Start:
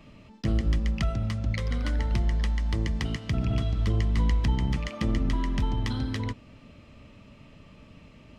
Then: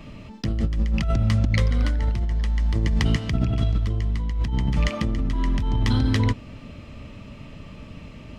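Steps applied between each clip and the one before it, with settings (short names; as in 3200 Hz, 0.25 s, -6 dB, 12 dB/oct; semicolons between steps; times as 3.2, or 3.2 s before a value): negative-ratio compressor -29 dBFS, ratio -1; low shelf 150 Hz +4 dB; gain +5 dB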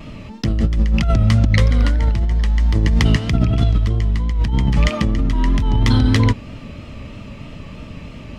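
vibrato 3.1 Hz 54 cents; gain +6.5 dB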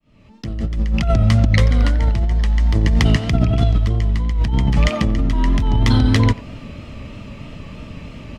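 opening faded in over 1.21 s; dynamic EQ 690 Hz, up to +5 dB, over -46 dBFS, Q 4.9; speakerphone echo 90 ms, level -19 dB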